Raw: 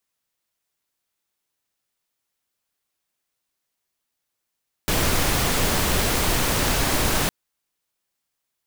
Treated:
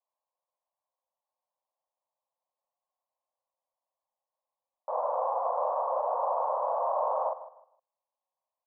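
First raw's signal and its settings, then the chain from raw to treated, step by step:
noise pink, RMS -21 dBFS 2.41 s
Chebyshev band-pass 520–1100 Hz, order 4; doubling 42 ms -2 dB; feedback delay 154 ms, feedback 25%, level -14.5 dB

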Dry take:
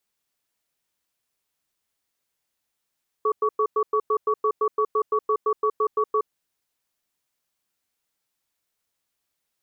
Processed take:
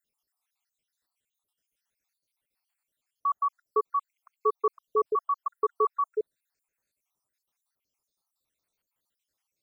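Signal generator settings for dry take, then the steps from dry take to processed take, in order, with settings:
cadence 429 Hz, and 1.13 kHz, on 0.07 s, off 0.10 s, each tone -21 dBFS 2.98 s
random holes in the spectrogram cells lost 67%

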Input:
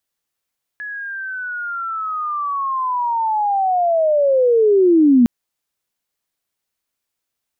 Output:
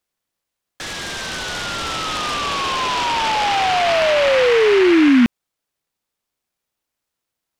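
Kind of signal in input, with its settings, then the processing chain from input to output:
sweep linear 1.7 kHz -> 230 Hz -26 dBFS -> -7.5 dBFS 4.46 s
delay time shaken by noise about 1.8 kHz, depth 0.13 ms

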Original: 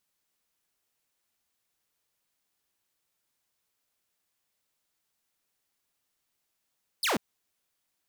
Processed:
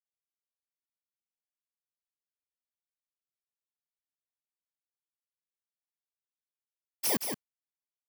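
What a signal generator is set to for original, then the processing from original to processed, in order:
laser zap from 5.3 kHz, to 170 Hz, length 0.14 s saw, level -22 dB
bit-reversed sample order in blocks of 32 samples; expander -28 dBFS; on a send: delay 174 ms -6.5 dB

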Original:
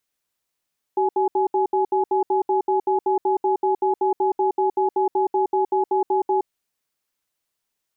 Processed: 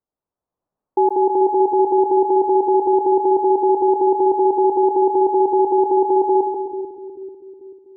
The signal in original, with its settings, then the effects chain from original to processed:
cadence 382 Hz, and 842 Hz, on 0.12 s, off 0.07 s, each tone -19.5 dBFS 5.46 s
low-pass 1 kHz 24 dB/octave; level rider gain up to 6 dB; two-band feedback delay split 380 Hz, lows 439 ms, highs 134 ms, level -6.5 dB

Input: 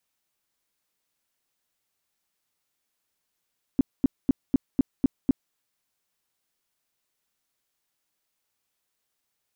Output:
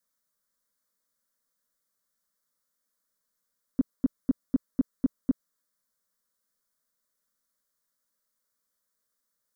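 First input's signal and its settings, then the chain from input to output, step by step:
tone bursts 267 Hz, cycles 5, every 0.25 s, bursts 7, -14.5 dBFS
static phaser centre 530 Hz, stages 8

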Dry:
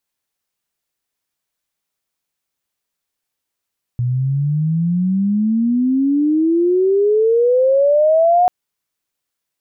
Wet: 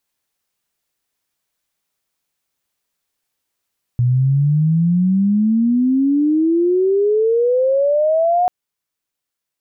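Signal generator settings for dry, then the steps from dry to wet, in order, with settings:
sweep logarithmic 120 Hz -> 730 Hz -15 dBFS -> -9 dBFS 4.49 s
gain riding

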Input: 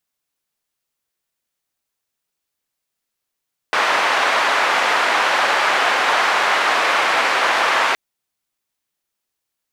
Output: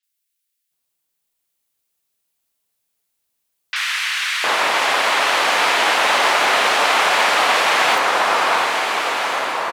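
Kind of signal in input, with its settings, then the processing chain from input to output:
noise band 720–1600 Hz, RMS -17 dBFS 4.22 s
treble shelf 4.1 kHz +6 dB; three bands offset in time mids, highs, lows 30/710 ms, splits 1.6/5.7 kHz; swelling reverb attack 1550 ms, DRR 2 dB

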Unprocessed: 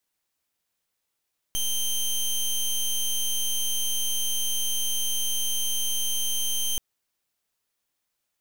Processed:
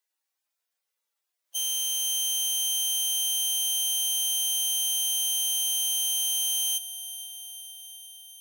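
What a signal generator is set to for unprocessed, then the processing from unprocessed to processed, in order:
pulse 3.14 kHz, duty 15% -25.5 dBFS 5.23 s
harmonic-percussive separation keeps harmonic; high-pass 460 Hz 12 dB/octave; echo that smears into a reverb 476 ms, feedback 67%, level -15.5 dB

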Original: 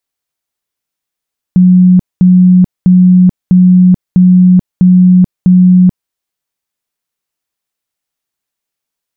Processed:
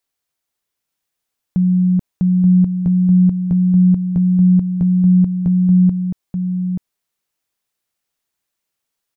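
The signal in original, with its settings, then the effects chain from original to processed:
tone bursts 182 Hz, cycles 79, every 0.65 s, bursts 7, -1.5 dBFS
peak limiter -10.5 dBFS; delay 881 ms -6 dB

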